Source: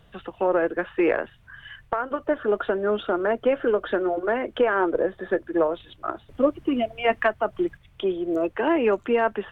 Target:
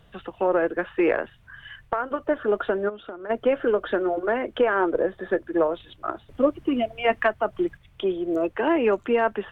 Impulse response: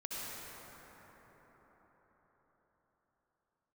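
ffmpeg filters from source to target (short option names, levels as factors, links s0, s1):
-filter_complex "[0:a]asplit=3[s0][s1][s2];[s0]afade=t=out:st=2.88:d=0.02[s3];[s1]acompressor=threshold=0.0224:ratio=16,afade=t=in:st=2.88:d=0.02,afade=t=out:st=3.29:d=0.02[s4];[s2]afade=t=in:st=3.29:d=0.02[s5];[s3][s4][s5]amix=inputs=3:normalize=0"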